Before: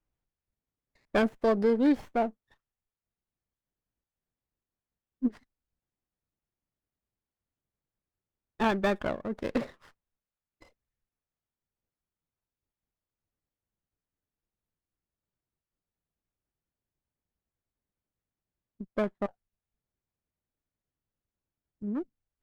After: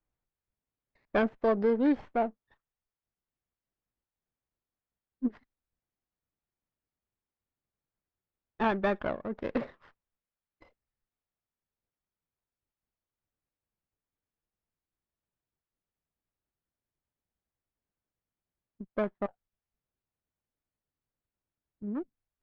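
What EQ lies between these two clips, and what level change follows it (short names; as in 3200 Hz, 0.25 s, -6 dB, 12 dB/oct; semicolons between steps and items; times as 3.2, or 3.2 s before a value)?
air absorption 140 m; low shelf 450 Hz -4.5 dB; high shelf 4500 Hz -11 dB; +1.5 dB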